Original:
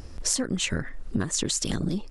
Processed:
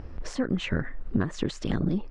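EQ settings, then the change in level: low-pass 2.1 kHz 12 dB/octave; +1.5 dB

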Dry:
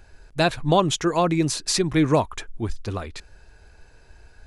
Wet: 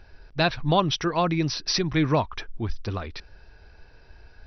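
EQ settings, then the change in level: dynamic bell 410 Hz, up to -5 dB, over -32 dBFS, Q 0.75; brick-wall FIR low-pass 6 kHz; 0.0 dB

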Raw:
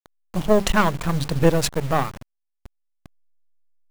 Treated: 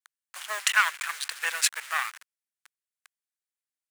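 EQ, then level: ladder high-pass 1.3 kHz, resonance 40%; dynamic bell 2.4 kHz, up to +4 dB, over -45 dBFS, Q 1.8; peaking EQ 8.9 kHz +7.5 dB 0.89 oct; +5.5 dB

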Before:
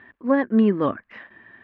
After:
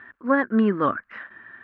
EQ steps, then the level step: peaking EQ 1.4 kHz +13.5 dB 0.64 oct; -2.5 dB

